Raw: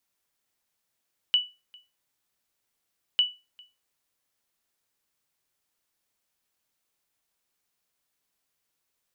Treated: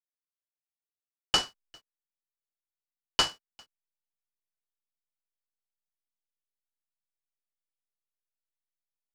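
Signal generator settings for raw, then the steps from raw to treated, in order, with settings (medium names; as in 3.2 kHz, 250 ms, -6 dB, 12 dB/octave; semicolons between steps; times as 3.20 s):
sonar ping 2.96 kHz, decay 0.26 s, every 1.85 s, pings 2, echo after 0.40 s, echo -28 dB -14 dBFS
hysteresis with a dead band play -53 dBFS; delay time shaken by noise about 1.8 kHz, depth 0.045 ms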